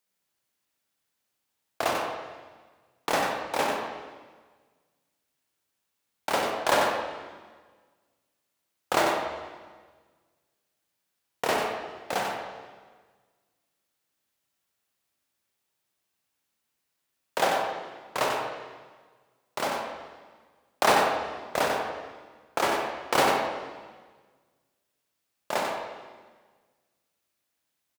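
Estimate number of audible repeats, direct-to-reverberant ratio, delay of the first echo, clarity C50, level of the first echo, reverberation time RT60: 1, 0.0 dB, 93 ms, 1.0 dB, −6.0 dB, 1.4 s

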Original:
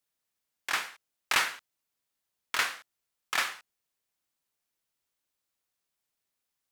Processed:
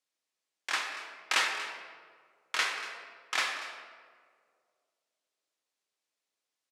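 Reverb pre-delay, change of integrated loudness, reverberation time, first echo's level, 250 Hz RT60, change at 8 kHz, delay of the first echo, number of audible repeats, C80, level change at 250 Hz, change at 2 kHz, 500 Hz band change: 4 ms, −2.0 dB, 2.0 s, −16.0 dB, 2.1 s, −2.0 dB, 236 ms, 1, 5.5 dB, −1.5 dB, −0.5 dB, +1.0 dB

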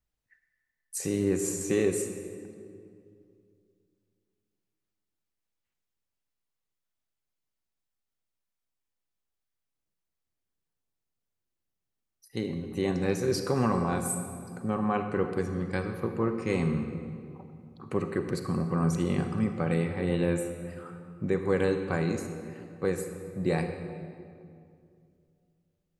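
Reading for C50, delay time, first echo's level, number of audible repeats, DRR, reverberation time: 7.0 dB, no echo audible, no echo audible, no echo audible, 6.5 dB, 2.4 s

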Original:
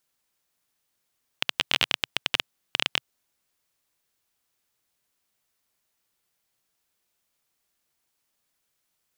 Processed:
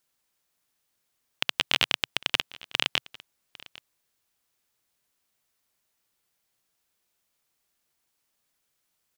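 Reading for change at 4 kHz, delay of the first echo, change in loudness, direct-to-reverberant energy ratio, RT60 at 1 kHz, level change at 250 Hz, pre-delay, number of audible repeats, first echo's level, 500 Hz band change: 0.0 dB, 802 ms, 0.0 dB, no reverb audible, no reverb audible, 0.0 dB, no reverb audible, 1, −21.5 dB, 0.0 dB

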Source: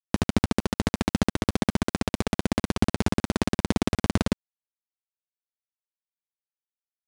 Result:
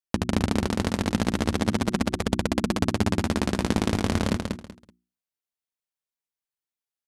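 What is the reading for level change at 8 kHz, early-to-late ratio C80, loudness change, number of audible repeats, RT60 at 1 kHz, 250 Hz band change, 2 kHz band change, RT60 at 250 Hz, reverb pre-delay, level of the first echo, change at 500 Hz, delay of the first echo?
+1.5 dB, no reverb audible, +1.0 dB, 3, no reverb audible, +1.0 dB, +1.5 dB, no reverb audible, no reverb audible, −4.0 dB, +1.5 dB, 190 ms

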